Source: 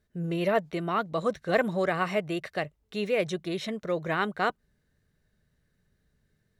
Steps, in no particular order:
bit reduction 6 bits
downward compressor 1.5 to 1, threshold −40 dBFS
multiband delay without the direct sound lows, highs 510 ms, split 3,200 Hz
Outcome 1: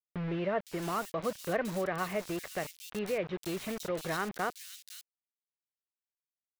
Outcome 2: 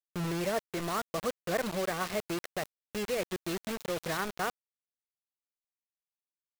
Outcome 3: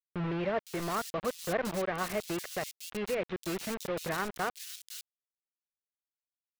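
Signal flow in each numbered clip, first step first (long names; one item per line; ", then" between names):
bit reduction, then downward compressor, then multiband delay without the direct sound
downward compressor, then multiband delay without the direct sound, then bit reduction
downward compressor, then bit reduction, then multiband delay without the direct sound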